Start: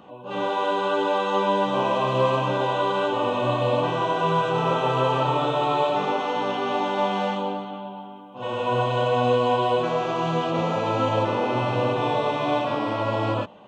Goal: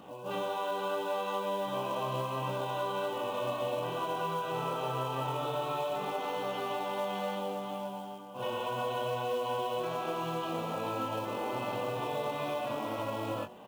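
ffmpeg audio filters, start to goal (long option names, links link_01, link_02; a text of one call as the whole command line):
ffmpeg -i in.wav -filter_complex "[0:a]bandreject=frequency=122.5:width_type=h:width=4,bandreject=frequency=245:width_type=h:width=4,bandreject=frequency=367.5:width_type=h:width=4,bandreject=frequency=490:width_type=h:width=4,bandreject=frequency=612.5:width_type=h:width=4,bandreject=frequency=735:width_type=h:width=4,bandreject=frequency=857.5:width_type=h:width=4,bandreject=frequency=980:width_type=h:width=4,bandreject=frequency=1102.5:width_type=h:width=4,bandreject=frequency=1225:width_type=h:width=4,bandreject=frequency=1347.5:width_type=h:width=4,bandreject=frequency=1470:width_type=h:width=4,bandreject=frequency=1592.5:width_type=h:width=4,bandreject=frequency=1715:width_type=h:width=4,bandreject=frequency=1837.5:width_type=h:width=4,bandreject=frequency=1960:width_type=h:width=4,bandreject=frequency=2082.5:width_type=h:width=4,bandreject=frequency=2205:width_type=h:width=4,bandreject=frequency=2327.5:width_type=h:width=4,bandreject=frequency=2450:width_type=h:width=4,acompressor=threshold=-31dB:ratio=4,acrusher=bits=5:mode=log:mix=0:aa=0.000001,asplit=2[link_01][link_02];[link_02]adelay=22,volume=-6.5dB[link_03];[link_01][link_03]amix=inputs=2:normalize=0,volume=-2.5dB" out.wav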